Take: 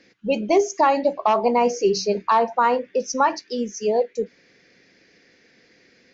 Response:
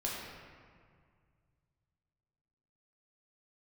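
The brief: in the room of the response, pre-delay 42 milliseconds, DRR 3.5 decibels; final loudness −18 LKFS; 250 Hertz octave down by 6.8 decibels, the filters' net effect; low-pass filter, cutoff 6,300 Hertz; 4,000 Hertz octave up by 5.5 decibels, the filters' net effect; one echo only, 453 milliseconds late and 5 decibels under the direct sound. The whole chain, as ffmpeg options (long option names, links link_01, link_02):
-filter_complex "[0:a]lowpass=6300,equalizer=frequency=250:width_type=o:gain=-9,equalizer=frequency=4000:width_type=o:gain=8.5,aecho=1:1:453:0.562,asplit=2[link_01][link_02];[1:a]atrim=start_sample=2205,adelay=42[link_03];[link_02][link_03]afir=irnorm=-1:irlink=0,volume=-7.5dB[link_04];[link_01][link_04]amix=inputs=2:normalize=0,volume=1.5dB"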